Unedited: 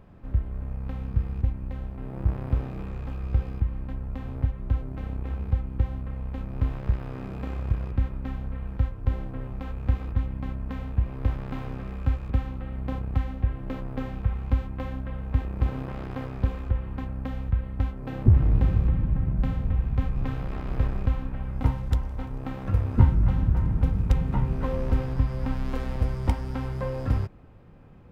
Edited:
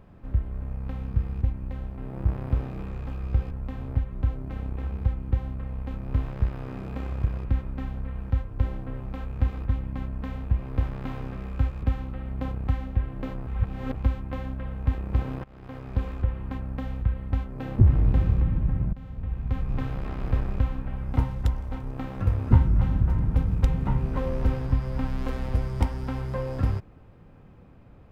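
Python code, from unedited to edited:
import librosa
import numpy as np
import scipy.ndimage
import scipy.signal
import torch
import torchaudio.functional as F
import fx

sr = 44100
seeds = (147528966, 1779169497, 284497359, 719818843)

y = fx.edit(x, sr, fx.cut(start_s=3.51, length_s=0.47),
    fx.reverse_span(start_s=13.94, length_s=0.48),
    fx.fade_in_from(start_s=15.91, length_s=0.64, floor_db=-23.5),
    fx.fade_in_from(start_s=19.4, length_s=0.81, floor_db=-19.5), tone=tone)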